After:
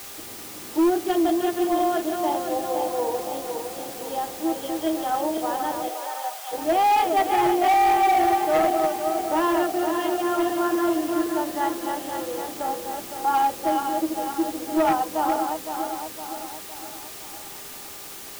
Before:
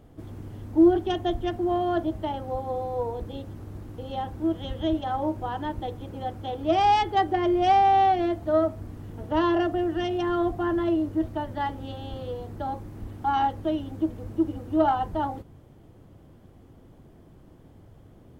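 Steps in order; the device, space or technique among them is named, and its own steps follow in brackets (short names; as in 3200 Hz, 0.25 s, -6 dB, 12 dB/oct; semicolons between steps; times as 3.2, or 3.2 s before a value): regenerating reverse delay 0.256 s, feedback 71%, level -5 dB; aircraft radio (BPF 340–2700 Hz; hard clip -18.5 dBFS, distortion -14 dB; buzz 400 Hz, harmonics 3, -56 dBFS 0 dB/oct; white noise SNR 15 dB); 5.88–6.51 HPF 360 Hz -> 880 Hz 24 dB/oct; gain +3 dB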